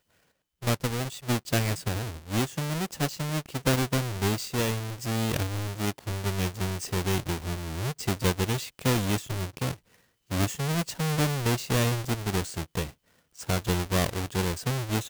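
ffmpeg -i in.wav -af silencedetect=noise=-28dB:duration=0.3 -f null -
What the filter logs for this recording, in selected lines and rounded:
silence_start: 0.00
silence_end: 0.63 | silence_duration: 0.63
silence_start: 9.71
silence_end: 10.31 | silence_duration: 0.60
silence_start: 12.85
silence_end: 13.41 | silence_duration: 0.57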